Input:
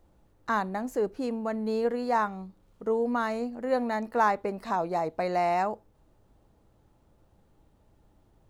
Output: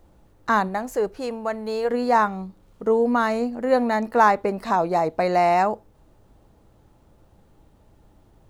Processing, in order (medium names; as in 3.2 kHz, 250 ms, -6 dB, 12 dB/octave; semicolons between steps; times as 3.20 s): 0.67–1.89 s: peaking EQ 260 Hz -6.5 dB -> -14 dB 1.1 oct; trim +7.5 dB